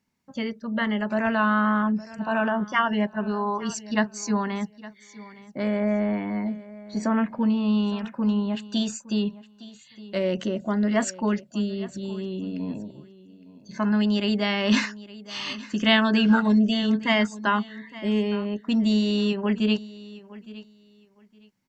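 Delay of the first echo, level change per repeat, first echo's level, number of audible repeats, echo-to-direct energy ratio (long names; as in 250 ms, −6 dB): 863 ms, −14.0 dB, −18.5 dB, 2, −18.5 dB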